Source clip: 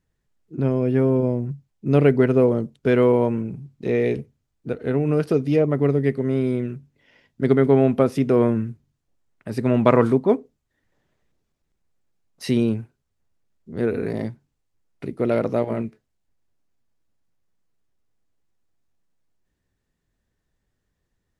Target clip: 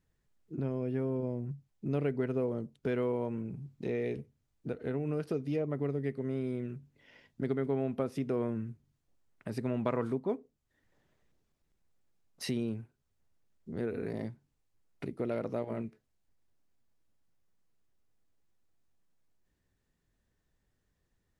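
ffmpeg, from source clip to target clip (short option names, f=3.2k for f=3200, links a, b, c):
-af "acompressor=threshold=-37dB:ratio=2,volume=-2.5dB"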